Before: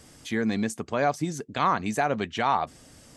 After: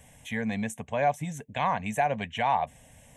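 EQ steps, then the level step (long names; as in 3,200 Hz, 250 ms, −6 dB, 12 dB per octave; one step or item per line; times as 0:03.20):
phaser with its sweep stopped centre 1,300 Hz, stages 6
+1.0 dB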